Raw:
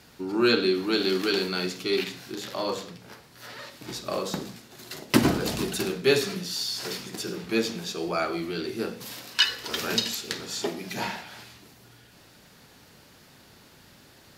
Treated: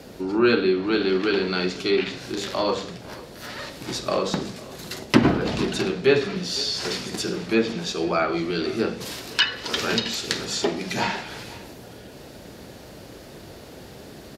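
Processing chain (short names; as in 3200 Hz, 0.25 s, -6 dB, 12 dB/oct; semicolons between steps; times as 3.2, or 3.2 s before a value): treble ducked by the level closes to 2800 Hz, closed at -22 dBFS; 9.52–10.45 high shelf 10000 Hz +10 dB; in parallel at -3 dB: vocal rider within 4 dB 0.5 s; on the sum: band noise 40–610 Hz -44 dBFS; echo 0.503 s -20 dB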